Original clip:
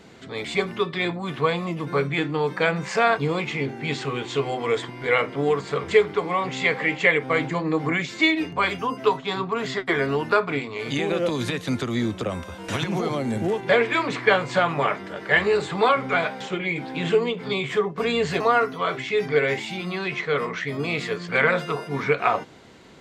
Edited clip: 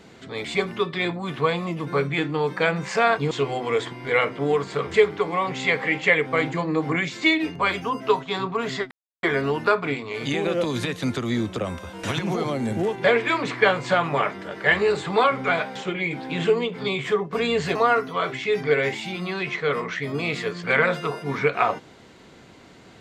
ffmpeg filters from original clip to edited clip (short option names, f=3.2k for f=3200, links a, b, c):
-filter_complex "[0:a]asplit=3[a][b][c];[a]atrim=end=3.312[d];[b]atrim=start=4.278:end=9.88,asetpts=PTS-STARTPTS,afade=t=out:st=5.598:d=0.004:c=hsin,apad=pad_dur=0.32[e];[c]atrim=start=9.88,asetpts=PTS-STARTPTS,afade=t=in:d=0.004:c=hsin[f];[e][f]concat=n=2:v=0:a=1[g];[d][g]acrossfade=d=0.004:c1=hsin:c2=hsin"